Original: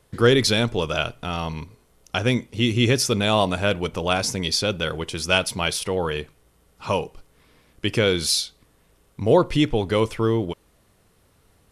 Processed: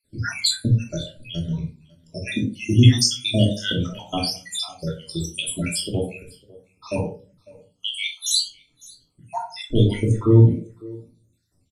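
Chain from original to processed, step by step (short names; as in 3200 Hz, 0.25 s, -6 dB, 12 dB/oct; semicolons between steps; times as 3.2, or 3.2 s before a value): random spectral dropouts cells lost 77%; graphic EQ 125/250/4000/8000 Hz +9/+8/+8/+12 dB; on a send: echo 0.552 s -18.5 dB; on the sum: shoebox room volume 460 m³, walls furnished, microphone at 2.9 m; spectral noise reduction 11 dB; gain -6 dB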